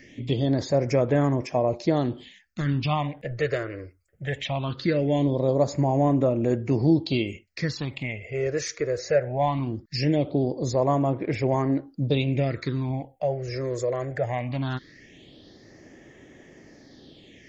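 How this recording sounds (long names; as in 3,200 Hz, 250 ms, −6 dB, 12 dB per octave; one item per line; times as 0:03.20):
phaser sweep stages 6, 0.2 Hz, lowest notch 220–4,200 Hz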